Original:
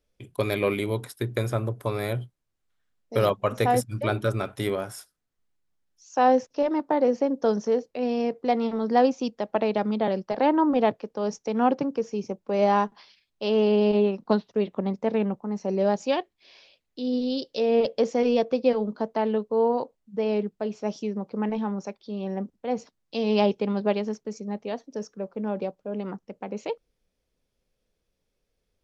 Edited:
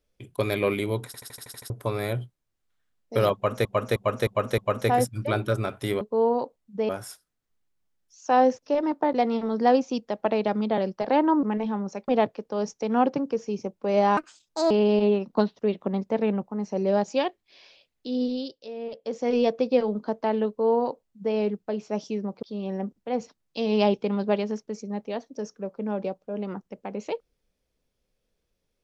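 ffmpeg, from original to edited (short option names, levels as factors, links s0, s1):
-filter_complex "[0:a]asplit=23[s0][s1][s2][s3][s4][s5][s6][s7][s8][s9][s10][s11][s12][s13][s14][s15][s16][s17][s18][s19][s20][s21][s22];[s0]atrim=end=1.142[s23];[s1]atrim=start=1.058:end=1.142[s24];[s2]atrim=start=1.058:end=1.142[s25];[s3]atrim=start=1.058:end=1.142[s26];[s4]atrim=start=1.058:end=1.142[s27];[s5]atrim=start=1.058:end=1.142[s28];[s6]atrim=start=1.058:end=1.142[s29];[s7]atrim=start=1.058:end=1.142[s30];[s8]atrim=start=1.698:end=3.652[s31];[s9]atrim=start=3.338:end=3.652[s32];[s10]atrim=start=3.338:end=3.652[s33];[s11]atrim=start=3.338:end=3.652[s34];[s12]atrim=start=3.338:end=4.772[s35];[s13]atrim=start=19.398:end=20.282[s36];[s14]atrim=start=4.768:end=7.012[s37];[s15]atrim=start=8.428:end=10.732[s38];[s16]atrim=start=21.348:end=22.002[s39];[s17]atrim=start=10.728:end=12.824[s40];[s18]atrim=start=12.82:end=13.63,asetpts=PTS-STARTPTS,asetrate=66591,aresample=44100,atrim=end_sample=23656,asetpts=PTS-STARTPTS[s41];[s19]atrim=start=13.626:end=17.52,asetpts=PTS-STARTPTS,afade=t=out:st=3.534:d=0.36:silence=0.211349[s42];[s20]atrim=start=17.52:end=17.94,asetpts=PTS-STARTPTS,volume=0.211[s43];[s21]atrim=start=17.94:end=21.352,asetpts=PTS-STARTPTS,afade=t=in:d=0.36:silence=0.211349[s44];[s22]atrim=start=21.998[s45];[s23][s24]acrossfade=d=0.004:c1=hsin:c2=hsin[s46];[s46][s25]acrossfade=d=0.004:c1=hsin:c2=hsin[s47];[s47][s26]acrossfade=d=0.004:c1=hsin:c2=hsin[s48];[s48][s27]acrossfade=d=0.004:c1=hsin:c2=hsin[s49];[s49][s28]acrossfade=d=0.004:c1=hsin:c2=hsin[s50];[s50][s29]acrossfade=d=0.004:c1=hsin:c2=hsin[s51];[s51][s30]acrossfade=d=0.004:c1=hsin:c2=hsin[s52];[s52][s31]acrossfade=d=0.004:c1=hsin:c2=hsin[s53];[s53][s32]acrossfade=d=0.004:c1=hsin:c2=hsin[s54];[s54][s33]acrossfade=d=0.004:c1=hsin:c2=hsin[s55];[s55][s34]acrossfade=d=0.004:c1=hsin:c2=hsin[s56];[s56][s35]acrossfade=d=0.004:c1=hsin:c2=hsin[s57];[s57][s36]acrossfade=d=0.004:c1=hsin:c2=hsin[s58];[s58][s37]acrossfade=d=0.004:c1=hsin:c2=hsin[s59];[s59][s38]acrossfade=d=0.004:c1=hsin:c2=hsin[s60];[s60][s39]acrossfade=d=0.004:c1=hsin:c2=hsin[s61];[s61][s40]acrossfade=d=0.004:c1=hsin:c2=hsin[s62];[s62][s41]acrossfade=d=0.004:c1=hsin:c2=hsin[s63];[s42][s43][s44]concat=n=3:v=0:a=1[s64];[s63][s64]acrossfade=d=0.004:c1=hsin:c2=hsin[s65];[s65][s45]acrossfade=d=0.004:c1=hsin:c2=hsin"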